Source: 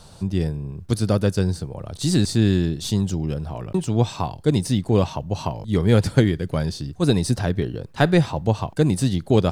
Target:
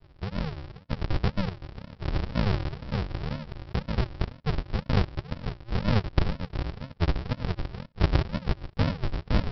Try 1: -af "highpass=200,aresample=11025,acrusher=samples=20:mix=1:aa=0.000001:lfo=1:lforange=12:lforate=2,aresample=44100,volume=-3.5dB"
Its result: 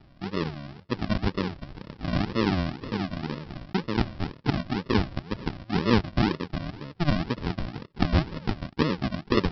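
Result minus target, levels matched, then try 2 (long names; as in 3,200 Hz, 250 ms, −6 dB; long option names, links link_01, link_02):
sample-and-hold swept by an LFO: distortion −34 dB
-af "highpass=200,aresample=11025,acrusher=samples=39:mix=1:aa=0.000001:lfo=1:lforange=23.4:lforate=2,aresample=44100,volume=-3.5dB"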